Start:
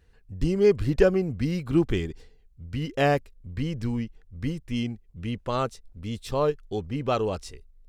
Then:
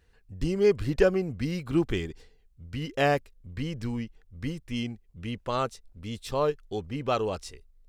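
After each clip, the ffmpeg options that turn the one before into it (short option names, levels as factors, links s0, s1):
-af "lowshelf=f=440:g=-4.5"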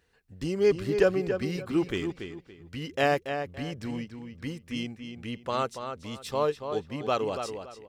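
-filter_complex "[0:a]highpass=f=190:p=1,asplit=2[s0][s1];[s1]adelay=283,lowpass=f=4200:p=1,volume=0.422,asplit=2[s2][s3];[s3]adelay=283,lowpass=f=4200:p=1,volume=0.27,asplit=2[s4][s5];[s5]adelay=283,lowpass=f=4200:p=1,volume=0.27[s6];[s0][s2][s4][s6]amix=inputs=4:normalize=0"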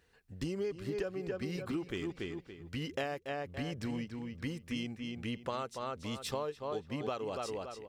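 -af "acompressor=threshold=0.0224:ratio=16"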